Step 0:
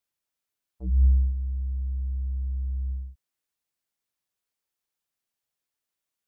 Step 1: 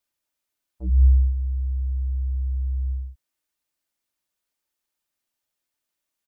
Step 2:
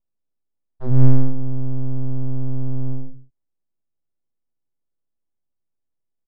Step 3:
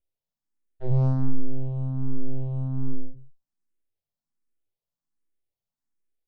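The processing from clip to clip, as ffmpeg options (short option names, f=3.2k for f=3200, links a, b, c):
-af "aecho=1:1:3.3:0.32,volume=3dB"
-af "aeval=exprs='abs(val(0))':c=same,aecho=1:1:96|149:0.141|0.133,adynamicsmooth=sensitivity=8:basefreq=530,volume=7.5dB"
-filter_complex "[0:a]asoftclip=type=tanh:threshold=-5dB,asplit=2[a][b];[b]afreqshift=1.3[c];[a][c]amix=inputs=2:normalize=1"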